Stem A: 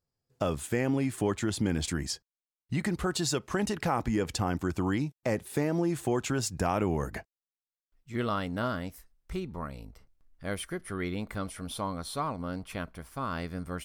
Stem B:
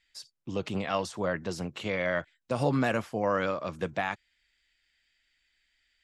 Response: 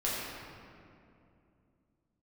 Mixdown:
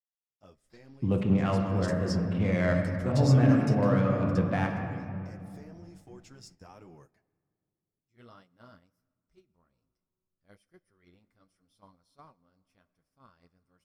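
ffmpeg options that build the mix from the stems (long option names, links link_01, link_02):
-filter_complex "[0:a]equalizer=frequency=5300:width=4.2:gain=12,flanger=delay=5.2:depth=6.6:regen=-23:speed=1.3:shape=triangular,volume=-11dB,afade=type=in:start_time=1.43:duration=0.28:silence=0.251189,afade=type=out:start_time=3.73:duration=0.3:silence=0.334965,asplit=3[link_01][link_02][link_03];[link_02]volume=-20dB[link_04];[1:a]bass=frequency=250:gain=14,treble=frequency=4000:gain=-14,adynamicsmooth=sensitivity=5:basefreq=2700,adelay=550,volume=2dB,asplit=2[link_05][link_06];[link_06]volume=-13.5dB[link_07];[link_03]apad=whole_len=290444[link_08];[link_05][link_08]sidechaincompress=threshold=-58dB:ratio=4:attack=25:release=555[link_09];[2:a]atrim=start_sample=2205[link_10];[link_04][link_07]amix=inputs=2:normalize=0[link_11];[link_11][link_10]afir=irnorm=-1:irlink=0[link_12];[link_01][link_09][link_12]amix=inputs=3:normalize=0,agate=range=-12dB:threshold=-54dB:ratio=16:detection=peak"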